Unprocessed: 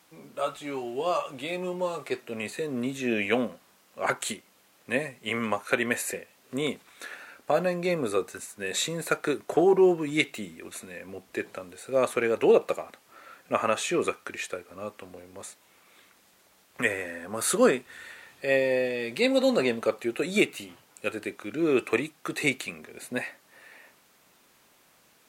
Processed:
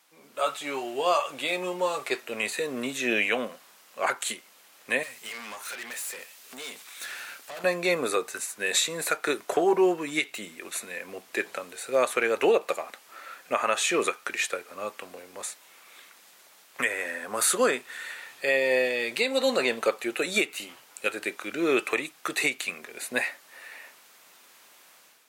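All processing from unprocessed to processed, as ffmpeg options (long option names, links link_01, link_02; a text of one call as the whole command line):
ffmpeg -i in.wav -filter_complex "[0:a]asettb=1/sr,asplit=3[link_01][link_02][link_03];[link_01]atrim=end=5.034[link_04];[link_02]atrim=start=5.03:end=7.64,asetpts=PTS-STARTPTS,afade=type=in:duration=0.004:curve=qsin,afade=type=out:start_time=2.606:duration=0.004:curve=qsin,highshelf=frequency=2200:gain=10,acompressor=threshold=-34dB:ratio=2.5:attack=3.2:release=140:knee=1:detection=peak,aeval=exprs='(tanh(100*val(0)+0.65)-tanh(0.65))/100':channel_layout=same[link_05];[link_03]atrim=start=7.636[link_06];[link_04][link_05]acrossfade=duration=0.004:curve1=hsin:curve2=qsin[link_07];[link_07][link_06]acrossfade=duration=0.004:curve1=qsin:curve2=hsin,highpass=frequency=830:poles=1,dynaudnorm=framelen=140:gausssize=5:maxgain=9dB,alimiter=limit=-11dB:level=0:latency=1:release=221,volume=-1.5dB" out.wav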